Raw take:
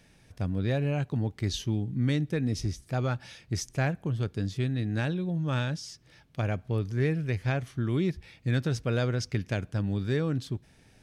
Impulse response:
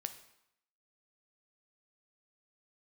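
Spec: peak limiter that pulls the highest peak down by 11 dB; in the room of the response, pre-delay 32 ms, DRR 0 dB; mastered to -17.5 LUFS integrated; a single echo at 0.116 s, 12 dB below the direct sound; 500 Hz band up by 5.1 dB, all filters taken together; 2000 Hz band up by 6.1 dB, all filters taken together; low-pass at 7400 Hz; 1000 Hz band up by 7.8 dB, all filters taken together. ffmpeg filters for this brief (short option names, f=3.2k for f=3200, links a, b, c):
-filter_complex "[0:a]lowpass=7.4k,equalizer=f=500:t=o:g=4,equalizer=f=1k:t=o:g=8.5,equalizer=f=2k:t=o:g=4.5,alimiter=limit=-20.5dB:level=0:latency=1,aecho=1:1:116:0.251,asplit=2[a][b];[1:a]atrim=start_sample=2205,adelay=32[c];[b][c]afir=irnorm=-1:irlink=0,volume=1.5dB[d];[a][d]amix=inputs=2:normalize=0,volume=10.5dB"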